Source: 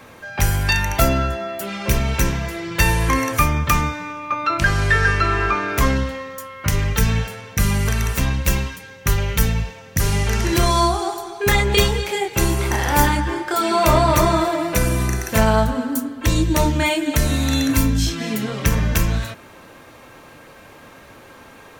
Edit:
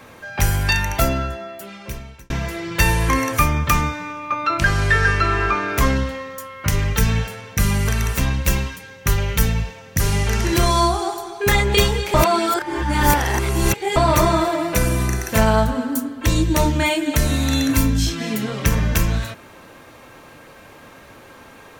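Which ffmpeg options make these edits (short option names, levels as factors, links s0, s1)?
-filter_complex "[0:a]asplit=4[s0][s1][s2][s3];[s0]atrim=end=2.3,asetpts=PTS-STARTPTS,afade=t=out:st=0.7:d=1.6[s4];[s1]atrim=start=2.3:end=12.142,asetpts=PTS-STARTPTS,afade=t=in:d=0.004:c=hsin[s5];[s2]atrim=start=12.138:end=13.962,asetpts=PTS-STARTPTS,areverse[s6];[s3]atrim=start=13.958[s7];[s4][s5]concat=n=2:v=0:a=1[s8];[s8][s6]acrossfade=d=0.004:c1=hsin:c2=hsin[s9];[s9][s7]acrossfade=d=0.004:c1=hsin:c2=hsin"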